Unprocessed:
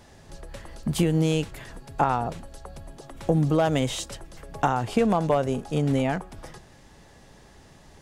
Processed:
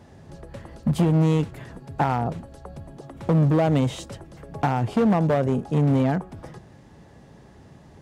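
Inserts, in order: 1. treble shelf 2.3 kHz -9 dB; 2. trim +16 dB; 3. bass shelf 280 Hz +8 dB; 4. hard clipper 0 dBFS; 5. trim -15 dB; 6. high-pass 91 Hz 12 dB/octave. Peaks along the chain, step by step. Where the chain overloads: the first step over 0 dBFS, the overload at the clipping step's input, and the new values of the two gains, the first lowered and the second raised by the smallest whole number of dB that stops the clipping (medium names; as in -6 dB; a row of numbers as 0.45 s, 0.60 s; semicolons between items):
-8.0 dBFS, +8.0 dBFS, +10.0 dBFS, 0.0 dBFS, -15.0 dBFS, -10.0 dBFS; step 2, 10.0 dB; step 2 +6 dB, step 5 -5 dB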